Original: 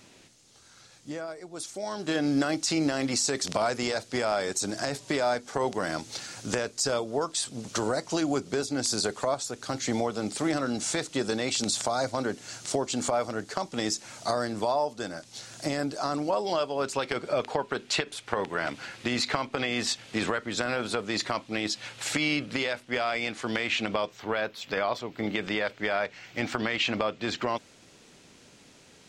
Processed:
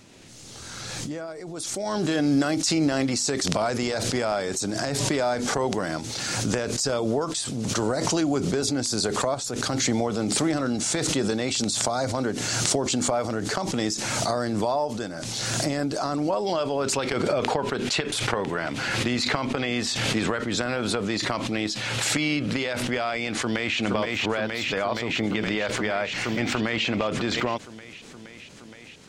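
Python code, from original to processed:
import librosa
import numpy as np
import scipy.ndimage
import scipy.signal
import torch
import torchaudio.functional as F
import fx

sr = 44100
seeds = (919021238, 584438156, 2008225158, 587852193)

y = fx.high_shelf(x, sr, hz=5400.0, db=4.5, at=(2.05, 2.74))
y = fx.echo_throw(y, sr, start_s=23.35, length_s=0.43, ms=470, feedback_pct=85, wet_db=-5.5)
y = fx.low_shelf(y, sr, hz=330.0, db=6.0)
y = fx.pre_swell(y, sr, db_per_s=21.0)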